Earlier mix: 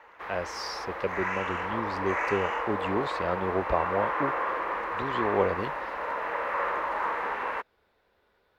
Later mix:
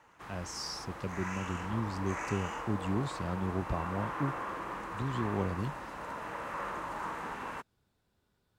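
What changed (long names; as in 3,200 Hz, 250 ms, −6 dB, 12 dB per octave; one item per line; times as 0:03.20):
speech −3.0 dB
master: add octave-band graphic EQ 125/250/500/1,000/2,000/4,000/8,000 Hz +11/+3/−11/−5/−10/−3/+11 dB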